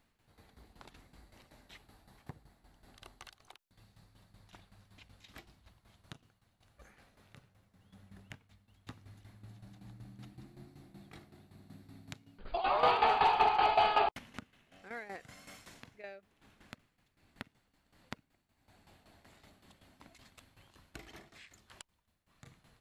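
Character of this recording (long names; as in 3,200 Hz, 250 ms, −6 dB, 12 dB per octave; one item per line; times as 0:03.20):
tremolo saw down 5.3 Hz, depth 75%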